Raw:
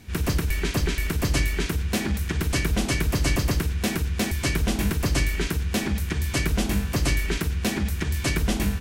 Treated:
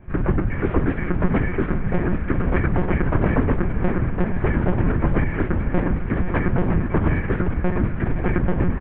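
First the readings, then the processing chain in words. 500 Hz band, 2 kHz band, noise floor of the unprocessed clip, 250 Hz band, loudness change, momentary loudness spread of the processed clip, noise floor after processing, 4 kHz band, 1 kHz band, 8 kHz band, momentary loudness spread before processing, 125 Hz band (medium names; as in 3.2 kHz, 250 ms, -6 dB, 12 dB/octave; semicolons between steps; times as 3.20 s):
+7.0 dB, 0.0 dB, -30 dBFS, +5.5 dB, +3.0 dB, 3 LU, -27 dBFS, under -15 dB, +6.0 dB, under -40 dB, 3 LU, +3.5 dB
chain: high-pass 76 Hz 12 dB/octave; in parallel at -12 dB: bit crusher 6-bit; on the sum: low-pass 1.6 kHz 24 dB/octave; echo that smears into a reverb 455 ms, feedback 51%, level -10 dB; monotone LPC vocoder at 8 kHz 180 Hz; delay 729 ms -17.5 dB; trim +5 dB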